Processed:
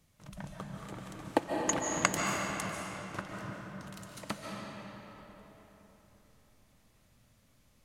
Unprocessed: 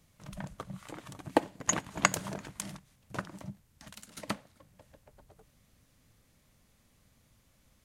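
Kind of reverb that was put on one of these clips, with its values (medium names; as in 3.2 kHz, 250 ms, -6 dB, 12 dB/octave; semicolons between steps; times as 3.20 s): algorithmic reverb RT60 3.9 s, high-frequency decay 0.7×, pre-delay 105 ms, DRR -1 dB; trim -3 dB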